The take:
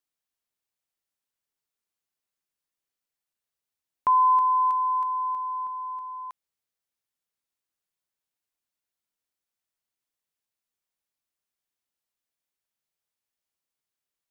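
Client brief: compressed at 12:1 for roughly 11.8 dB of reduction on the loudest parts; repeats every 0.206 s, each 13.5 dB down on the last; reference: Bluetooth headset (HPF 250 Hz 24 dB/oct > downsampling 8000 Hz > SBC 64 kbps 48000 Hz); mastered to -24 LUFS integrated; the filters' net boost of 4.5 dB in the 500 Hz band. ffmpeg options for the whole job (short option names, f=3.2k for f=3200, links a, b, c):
-af "equalizer=f=500:t=o:g=6,acompressor=threshold=-28dB:ratio=12,highpass=f=250:w=0.5412,highpass=f=250:w=1.3066,aecho=1:1:206|412:0.211|0.0444,aresample=8000,aresample=44100,volume=6dB" -ar 48000 -c:a sbc -b:a 64k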